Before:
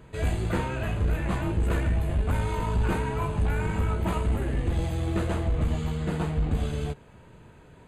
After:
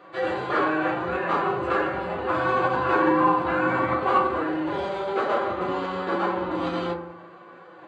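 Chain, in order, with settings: speaker cabinet 480–4800 Hz, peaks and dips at 550 Hz +3 dB, 1200 Hz +9 dB, 2300 Hz -5 dB, 3600 Hz -3 dB; reverb RT60 0.75 s, pre-delay 4 ms, DRR -2.5 dB; formant-preserving pitch shift +3 st; gain +4.5 dB

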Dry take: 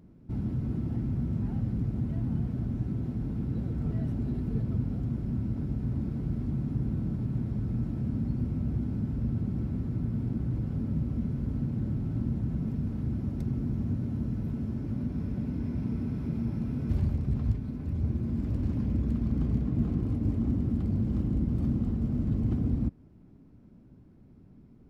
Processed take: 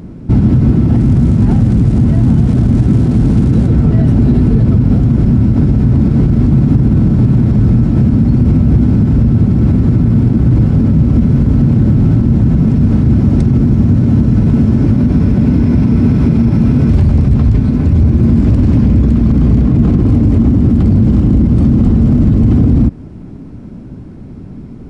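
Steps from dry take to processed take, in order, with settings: 0.95–3.67 crackle 530/s -51 dBFS; downsampling 22050 Hz; maximiser +26 dB; gain -1 dB

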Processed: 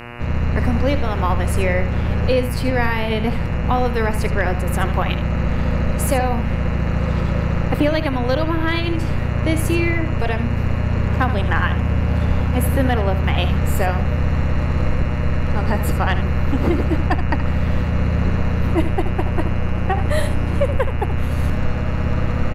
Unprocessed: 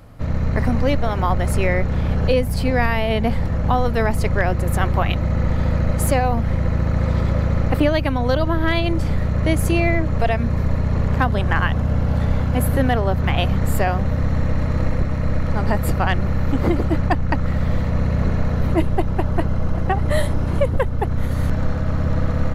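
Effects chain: notch 680 Hz, Q 12; echo 76 ms -11 dB; buzz 120 Hz, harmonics 24, -35 dBFS -2 dB/oct

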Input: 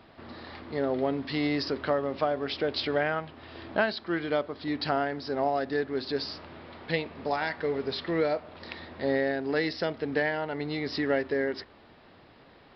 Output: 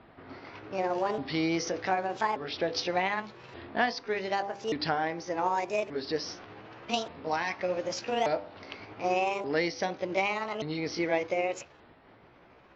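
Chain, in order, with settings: repeated pitch sweeps +7 st, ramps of 1.18 s; low-pass opened by the level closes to 2300 Hz, open at -25 dBFS; de-hum 99.49 Hz, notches 13

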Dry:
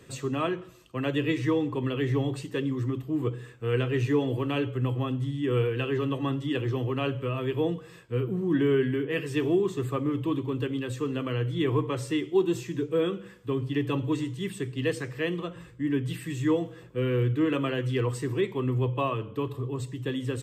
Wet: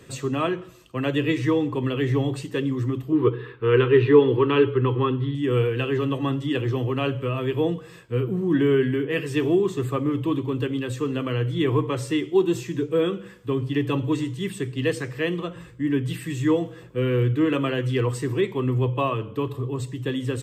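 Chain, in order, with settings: 3.12–5.35 EQ curve 260 Hz 0 dB, 420 Hz +11 dB, 660 Hz -12 dB, 930 Hz +8 dB, 1400 Hz +6 dB, 2400 Hz +2 dB, 3900 Hz +2 dB, 7100 Hz -28 dB, 11000 Hz -13 dB; gain +4 dB

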